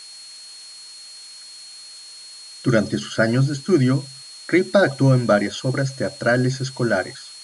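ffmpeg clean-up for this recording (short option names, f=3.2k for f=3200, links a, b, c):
-af "bandreject=f=4.3k:w=30,afftdn=nr=24:nf=-40"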